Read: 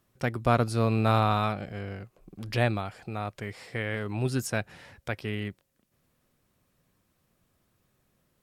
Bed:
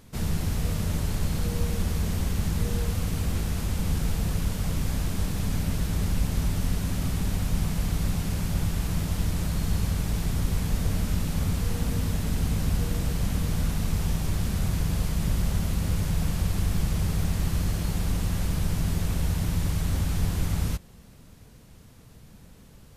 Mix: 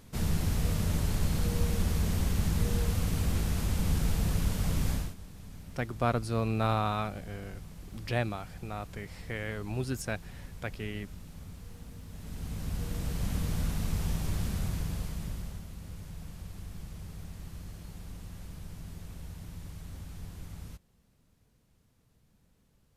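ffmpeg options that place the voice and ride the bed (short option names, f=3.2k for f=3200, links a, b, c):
-filter_complex "[0:a]adelay=5550,volume=-5dB[a];[1:a]volume=12.5dB,afade=t=out:st=4.91:d=0.24:silence=0.133352,afade=t=in:st=12.08:d=1.27:silence=0.188365,afade=t=out:st=14.43:d=1.22:silence=0.237137[b];[a][b]amix=inputs=2:normalize=0"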